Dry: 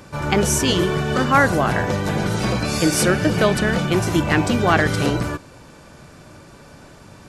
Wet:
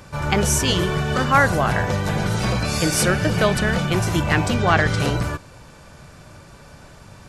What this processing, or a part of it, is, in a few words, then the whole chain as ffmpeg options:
low shelf boost with a cut just above: -filter_complex "[0:a]lowshelf=f=100:g=5,equalizer=f=300:t=o:w=1.1:g=-6,asettb=1/sr,asplit=3[s0][s1][s2];[s0]atrim=end=4.544[s3];[s1]atrim=start=4.54:end=5,asetpts=PTS-STARTPTS,afade=t=in:d=0.004:c=qsin,afade=t=out:st=0.456:d=0.004:c=qsin,lowpass=7500[s4];[s2]atrim=start=4.996[s5];[s3][s4]acrossfade=d=0.004:c1=hsin:c2=qsin[s6];[s6][s5]acrossfade=d=0.004:c1=qsin:c2=hsin"

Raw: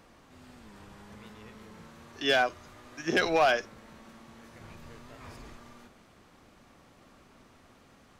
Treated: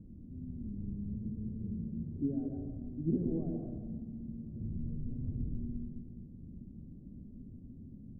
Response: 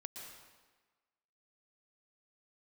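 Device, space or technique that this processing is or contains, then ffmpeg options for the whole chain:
club heard from the street: -filter_complex "[0:a]alimiter=limit=0.0631:level=0:latency=1:release=189,lowpass=f=240:w=0.5412,lowpass=f=240:w=1.3066[s0];[1:a]atrim=start_sample=2205[s1];[s0][s1]afir=irnorm=-1:irlink=0,volume=7.94"

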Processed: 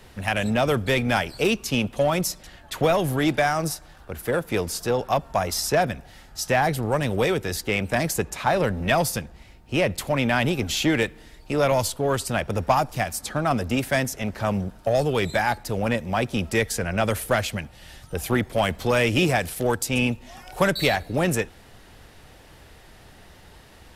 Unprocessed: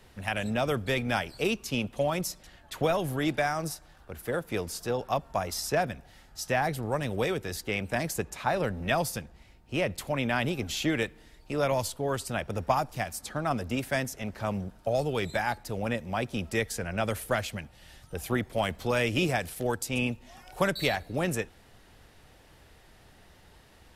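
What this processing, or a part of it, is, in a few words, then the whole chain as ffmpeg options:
parallel distortion: -filter_complex "[0:a]asplit=2[s0][s1];[s1]asoftclip=type=hard:threshold=0.0501,volume=0.562[s2];[s0][s2]amix=inputs=2:normalize=0,volume=1.5"

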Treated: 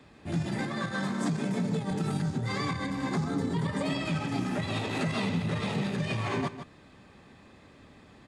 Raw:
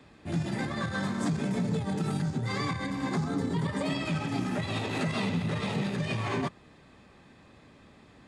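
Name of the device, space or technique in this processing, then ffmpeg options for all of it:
ducked delay: -filter_complex "[0:a]asplit=3[s0][s1][s2];[s1]adelay=152,volume=0.562[s3];[s2]apad=whole_len=371778[s4];[s3][s4]sidechaincompress=threshold=0.0112:ratio=8:attack=16:release=272[s5];[s0][s5]amix=inputs=2:normalize=0,asettb=1/sr,asplit=3[s6][s7][s8];[s6]atrim=end=0.634[s9];[s7]atrim=start=0.63:end=1.91,asetpts=PTS-STARTPTS,afade=t=in:d=0.004:c=qsin,afade=t=out:st=1.276:d=0.004:c=qsin,highpass=f=130:w=0.5412,highpass=f=130:w=1.3066[s10];[s8]atrim=start=1.906[s11];[s9][s10]acrossfade=d=0.004:c1=hsin:c2=qsin[s12];[s12][s11]acrossfade=d=0.004:c1=qsin:c2=hsin"

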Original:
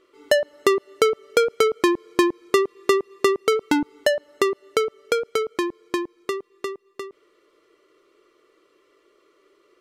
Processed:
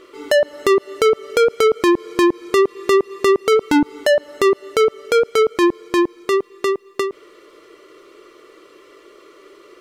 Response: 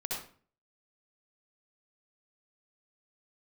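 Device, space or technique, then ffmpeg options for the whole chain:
loud club master: -af "acompressor=threshold=0.0447:ratio=1.5,asoftclip=type=hard:threshold=0.178,alimiter=level_in=15.8:limit=0.891:release=50:level=0:latency=1,volume=0.355"

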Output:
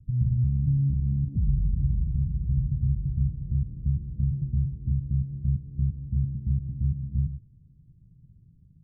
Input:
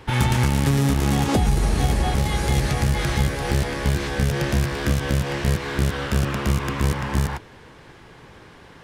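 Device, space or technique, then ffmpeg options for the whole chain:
the neighbour's flat through the wall: -af "lowpass=f=160:w=0.5412,lowpass=f=160:w=1.3066,equalizer=f=150:t=o:w=0.77:g=3.5,volume=0.596"

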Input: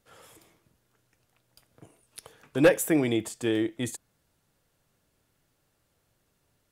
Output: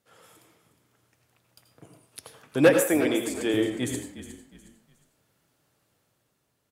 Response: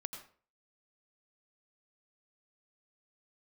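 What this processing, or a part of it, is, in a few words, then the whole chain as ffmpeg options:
far laptop microphone: -filter_complex "[1:a]atrim=start_sample=2205[s0];[0:a][s0]afir=irnorm=-1:irlink=0,highpass=100,dynaudnorm=f=130:g=11:m=1.68,asettb=1/sr,asplit=3[s1][s2][s3];[s1]atrim=end=2.814[s4];[s2]atrim=start=2.81:end=3.54,asetpts=PTS-STARTPTS,afade=t=in:d=0.004:c=qsin,afade=t=out:st=0.726:d=0.004:c=qsin,highpass=270[s5];[s3]atrim=start=3.536[s6];[s4][s5]acrossfade=d=0.004:c1=hsin:c2=qsin[s7];[s7][s6]acrossfade=d=0.004:c1=qsin:c2=hsin,asplit=4[s8][s9][s10][s11];[s9]adelay=361,afreqshift=-35,volume=0.224[s12];[s10]adelay=722,afreqshift=-70,volume=0.0716[s13];[s11]adelay=1083,afreqshift=-105,volume=0.0229[s14];[s8][s12][s13][s14]amix=inputs=4:normalize=0"

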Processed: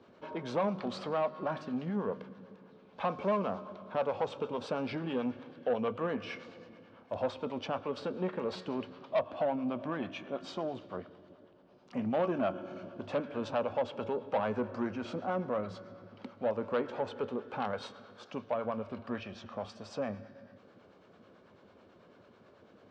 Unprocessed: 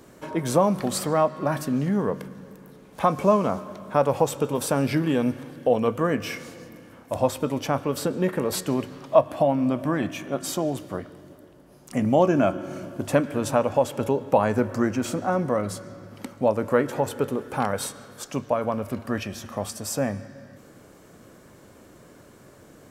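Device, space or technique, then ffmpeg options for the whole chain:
guitar amplifier with harmonic tremolo: -filter_complex "[0:a]acrossover=split=600[s0][s1];[s0]aeval=exprs='val(0)*(1-0.5/2+0.5/2*cos(2*PI*9.1*n/s))':c=same[s2];[s1]aeval=exprs='val(0)*(1-0.5/2-0.5/2*cos(2*PI*9.1*n/s))':c=same[s3];[s2][s3]amix=inputs=2:normalize=0,asoftclip=type=tanh:threshold=0.119,highpass=110,equalizer=f=140:t=q:w=4:g=-10,equalizer=f=300:t=q:w=4:g=-6,equalizer=f=1900:t=q:w=4:g=-6,lowpass=f=4100:w=0.5412,lowpass=f=4100:w=1.3066,volume=0.596"

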